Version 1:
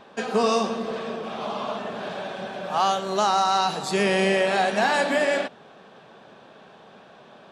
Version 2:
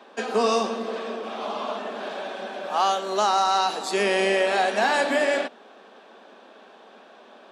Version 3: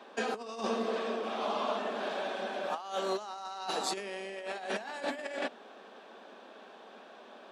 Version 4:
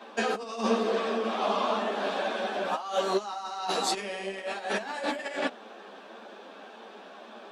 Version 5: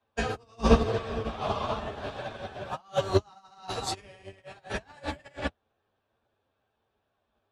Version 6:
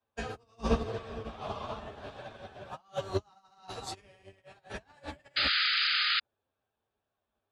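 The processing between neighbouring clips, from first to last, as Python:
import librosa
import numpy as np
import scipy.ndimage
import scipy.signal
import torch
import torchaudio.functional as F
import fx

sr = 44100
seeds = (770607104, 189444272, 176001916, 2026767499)

y1 = scipy.signal.sosfilt(scipy.signal.butter(8, 220.0, 'highpass', fs=sr, output='sos'), x)
y2 = fx.over_compress(y1, sr, threshold_db=-27.0, ratio=-0.5)
y2 = F.gain(torch.from_numpy(y2), -7.0).numpy()
y3 = fx.ensemble(y2, sr)
y3 = F.gain(torch.from_numpy(y3), 8.5).numpy()
y4 = fx.octave_divider(y3, sr, octaves=2, level_db=3.0)
y4 = fx.upward_expand(y4, sr, threshold_db=-45.0, expansion=2.5)
y4 = F.gain(torch.from_numpy(y4), 6.5).numpy()
y5 = fx.spec_paint(y4, sr, seeds[0], shape='noise', start_s=5.36, length_s=0.84, low_hz=1200.0, high_hz=5000.0, level_db=-20.0)
y5 = F.gain(torch.from_numpy(y5), -8.0).numpy()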